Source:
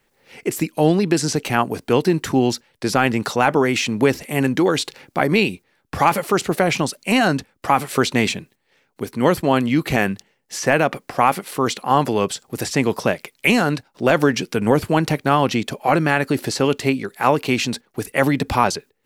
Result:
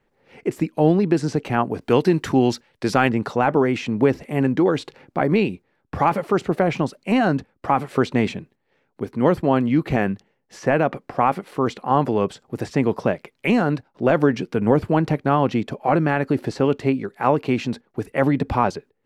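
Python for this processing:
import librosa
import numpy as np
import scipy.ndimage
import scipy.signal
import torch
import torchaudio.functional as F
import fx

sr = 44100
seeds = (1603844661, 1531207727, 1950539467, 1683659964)

y = fx.lowpass(x, sr, hz=fx.steps((0.0, 1100.0), (1.81, 3200.0), (3.09, 1000.0)), slope=6)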